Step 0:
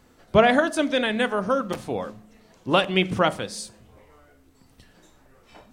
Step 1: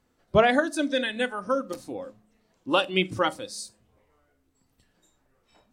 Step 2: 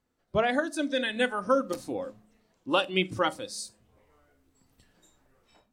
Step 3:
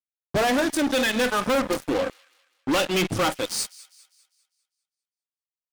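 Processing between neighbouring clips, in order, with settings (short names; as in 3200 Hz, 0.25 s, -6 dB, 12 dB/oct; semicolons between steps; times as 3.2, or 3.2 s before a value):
spectral noise reduction 11 dB; gain -2 dB
AGC gain up to 11.5 dB; gain -8.5 dB
fuzz box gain 36 dB, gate -40 dBFS; thin delay 0.2 s, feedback 44%, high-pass 2100 Hz, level -19 dB; gain -6 dB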